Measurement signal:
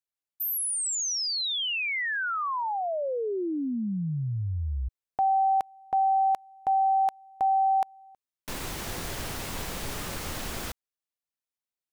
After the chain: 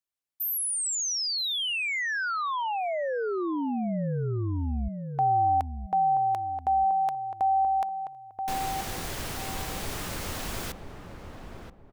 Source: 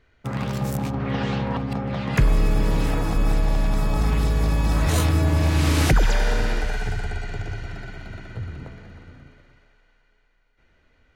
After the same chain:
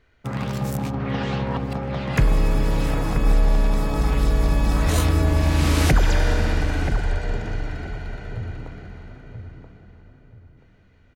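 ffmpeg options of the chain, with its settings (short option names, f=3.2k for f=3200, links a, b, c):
-filter_complex "[0:a]asplit=2[a][b];[b]adelay=980,lowpass=f=1k:p=1,volume=-6dB,asplit=2[c][d];[d]adelay=980,lowpass=f=1k:p=1,volume=0.32,asplit=2[e][f];[f]adelay=980,lowpass=f=1k:p=1,volume=0.32,asplit=2[g][h];[h]adelay=980,lowpass=f=1k:p=1,volume=0.32[i];[a][c][e][g][i]amix=inputs=5:normalize=0"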